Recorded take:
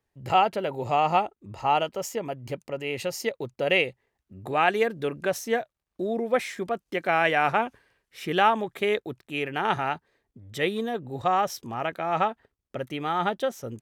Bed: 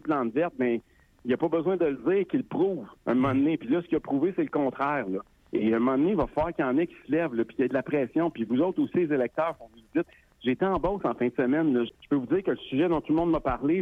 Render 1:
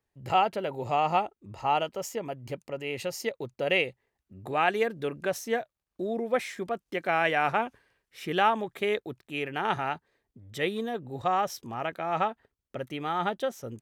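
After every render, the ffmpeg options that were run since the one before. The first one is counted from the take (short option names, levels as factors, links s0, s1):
-af "volume=0.708"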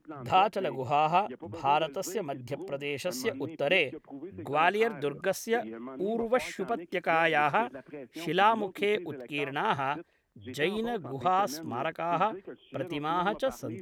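-filter_complex "[1:a]volume=0.141[s0];[0:a][s0]amix=inputs=2:normalize=0"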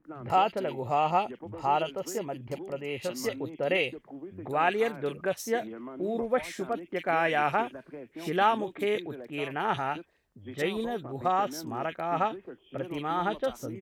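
-filter_complex "[0:a]acrossover=split=2500[s0][s1];[s1]adelay=40[s2];[s0][s2]amix=inputs=2:normalize=0"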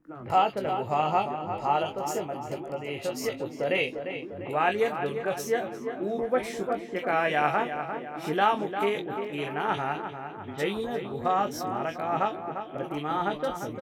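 -filter_complex "[0:a]asplit=2[s0][s1];[s1]adelay=20,volume=0.398[s2];[s0][s2]amix=inputs=2:normalize=0,asplit=2[s3][s4];[s4]adelay=349,lowpass=f=2500:p=1,volume=0.398,asplit=2[s5][s6];[s6]adelay=349,lowpass=f=2500:p=1,volume=0.54,asplit=2[s7][s8];[s8]adelay=349,lowpass=f=2500:p=1,volume=0.54,asplit=2[s9][s10];[s10]adelay=349,lowpass=f=2500:p=1,volume=0.54,asplit=2[s11][s12];[s12]adelay=349,lowpass=f=2500:p=1,volume=0.54,asplit=2[s13][s14];[s14]adelay=349,lowpass=f=2500:p=1,volume=0.54[s15];[s3][s5][s7][s9][s11][s13][s15]amix=inputs=7:normalize=0"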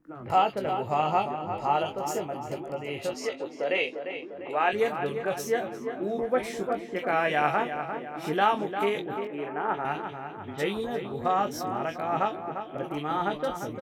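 -filter_complex "[0:a]asettb=1/sr,asplit=3[s0][s1][s2];[s0]atrim=end=3.144[s3];[s1]atrim=start=3.14:end=4.73,asetpts=PTS-STARTPTS,afade=t=in:d=0.004:c=qsin,afade=t=out:st=1.586:d=0.004:c=qsin,highpass=310,lowpass=6900[s4];[s2]atrim=start=4.726[s5];[s3][s4]acrossfade=d=0.004:c1=hsin:c2=qsin[s6];[s6][s5]acrossfade=d=0.004:c1=qsin:c2=hsin,asettb=1/sr,asplit=3[s7][s8][s9];[s7]atrim=end=9.274[s10];[s8]atrim=start=9.27:end=9.85,asetpts=PTS-STARTPTS,afade=t=in:d=0.004:c=qsin,afade=t=out:st=0.576:d=0.004:c=qsin,acrossover=split=190 2000:gain=0.158 1 0.112[s11][s12][s13];[s11][s12][s13]amix=inputs=3:normalize=0[s14];[s9]atrim=start=9.846[s15];[s10][s14]acrossfade=d=0.004:c1=hsin:c2=qsin[s16];[s16][s15]acrossfade=d=0.004:c1=qsin:c2=hsin"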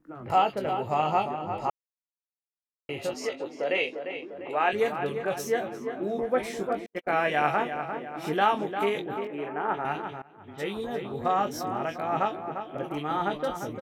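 -filter_complex "[0:a]asettb=1/sr,asplit=3[s0][s1][s2];[s0]atrim=end=6.864[s3];[s1]atrim=start=6.86:end=7.5,asetpts=PTS-STARTPTS,afade=t=in:d=0.004:c=qsin,afade=t=out:st=0.636:d=0.004:c=qsin,agate=range=0.00178:threshold=0.0316:ratio=16:release=100:detection=peak[s4];[s2]atrim=start=7.496[s5];[s3][s4]acrossfade=d=0.004:c1=hsin:c2=qsin[s6];[s6][s5]acrossfade=d=0.004:c1=qsin:c2=hsin,asplit=4[s7][s8][s9][s10];[s7]atrim=end=1.7,asetpts=PTS-STARTPTS,afade=t=out:st=1.696:d=0.004:c=hsin[s11];[s8]atrim=start=1.7:end=2.89,asetpts=PTS-STARTPTS,volume=0[s12];[s9]atrim=start=2.89:end=10.22,asetpts=PTS-STARTPTS,afade=t=in:d=0.004:c=hsin,afade=t=out:st=7.326:d=0.004:c=hsin:silence=0.0749894[s13];[s10]atrim=start=10.22,asetpts=PTS-STARTPTS,afade=t=in:d=1.02:c=qsin:silence=0.0749894[s14];[s11][s12][s13][s14]concat=n=4:v=0:a=1"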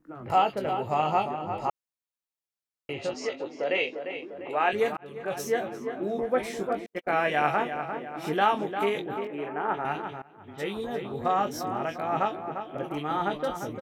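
-filter_complex "[0:a]asettb=1/sr,asplit=3[s0][s1][s2];[s0]atrim=end=2.934[s3];[s1]atrim=start=2.93:end=4,asetpts=PTS-STARTPTS,afade=t=in:d=0.004:c=qsin,afade=t=out:st=1.066:d=0.004:c=qsin,lowpass=f=7100:w=0.5412,lowpass=f=7100:w=1.3066[s4];[s2]atrim=start=3.996[s5];[s3][s4]acrossfade=d=0.004:c1=hsin:c2=qsin[s6];[s6][s5]acrossfade=d=0.004:c1=qsin:c2=hsin,asplit=2[s7][s8];[s7]atrim=end=4.97,asetpts=PTS-STARTPTS,afade=t=out:st=4.966:d=0.004:c=hsin[s9];[s8]atrim=start=4.97,asetpts=PTS-STARTPTS,afade=t=in:d=0.44[s10];[s9][s10]concat=n=2:v=0:a=1"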